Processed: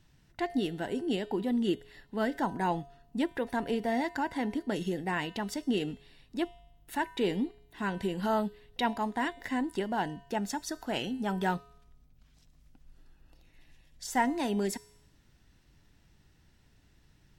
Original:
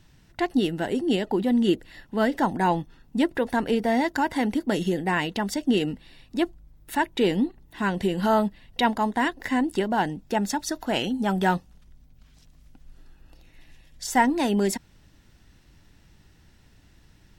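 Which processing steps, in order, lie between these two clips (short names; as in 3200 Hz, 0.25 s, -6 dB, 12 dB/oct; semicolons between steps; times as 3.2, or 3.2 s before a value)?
4.09–4.76 high shelf 5100 Hz -5 dB; resonator 140 Hz, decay 0.8 s, harmonics odd, mix 60%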